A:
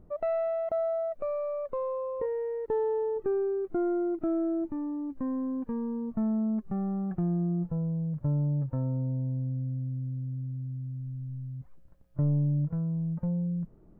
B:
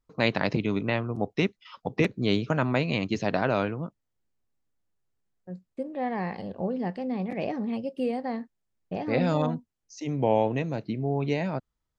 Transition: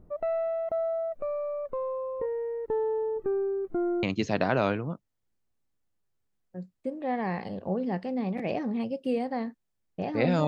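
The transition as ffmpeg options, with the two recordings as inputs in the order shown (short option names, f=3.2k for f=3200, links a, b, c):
-filter_complex "[0:a]apad=whole_dur=10.47,atrim=end=10.47,atrim=end=4.032[a];[1:a]atrim=start=2.958:end=9.4[b];[a][b]acrossfade=d=0.004:c1=hsin:c2=hsin"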